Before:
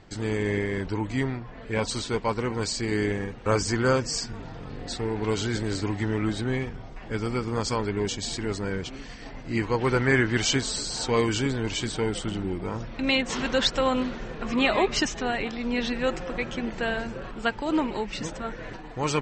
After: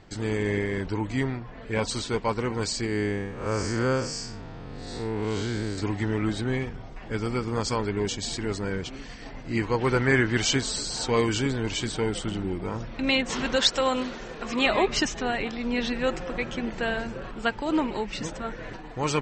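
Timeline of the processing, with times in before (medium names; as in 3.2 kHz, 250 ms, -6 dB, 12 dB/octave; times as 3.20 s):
2.86–5.78 s: spectral blur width 162 ms
13.56–14.66 s: tone controls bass -7 dB, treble +6 dB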